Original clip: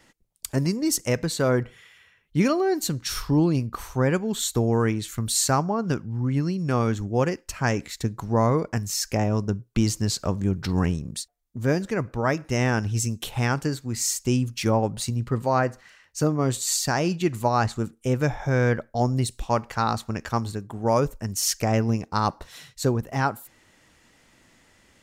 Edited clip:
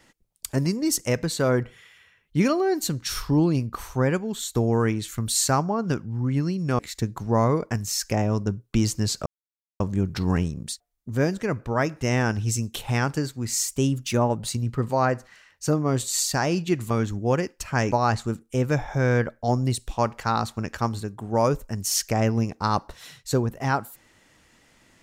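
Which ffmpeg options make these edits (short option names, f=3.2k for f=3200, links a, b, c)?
-filter_complex "[0:a]asplit=8[a][b][c][d][e][f][g][h];[a]atrim=end=4.55,asetpts=PTS-STARTPTS,afade=t=out:st=4.02:d=0.53:silence=0.473151[i];[b]atrim=start=4.55:end=6.792,asetpts=PTS-STARTPTS,afade=t=in:d=0.004:c=hsin:silence=0.473151[j];[c]atrim=start=7.808:end=10.28,asetpts=PTS-STARTPTS,afade=t=out:st=2.468:d=0.004:c=hsin,apad=pad_dur=0.54[k];[d]atrim=start=10.28:end=14.164,asetpts=PTS-STARTPTS,afade=t=in:d=0.004:c=hsin[l];[e]atrim=start=14.16:end=14.91,asetpts=PTS-STARTPTS,asetrate=47628,aresample=44100[m];[f]atrim=start=14.906:end=17.442[n];[g]atrim=start=6.788:end=7.812[o];[h]atrim=start=17.438[p];[i][j]concat=n=2:v=0:a=1[q];[k][l]concat=n=2:v=0:a=1[r];[q][r]acrossfade=d=0.004:c1=hsin:c2=hsin[s];[s][m]acrossfade=d=0.004:c1=hsin:c2=hsin[t];[t][n]acrossfade=d=0.004:c1=hsin:c2=hsin[u];[u][o]acrossfade=d=0.004:c1=hsin:c2=hsin[v];[v][p]acrossfade=d=0.004:c1=hsin:c2=hsin"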